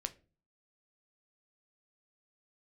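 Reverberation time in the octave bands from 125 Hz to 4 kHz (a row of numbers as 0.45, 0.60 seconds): 0.60, 0.55, 0.40, 0.30, 0.30, 0.25 seconds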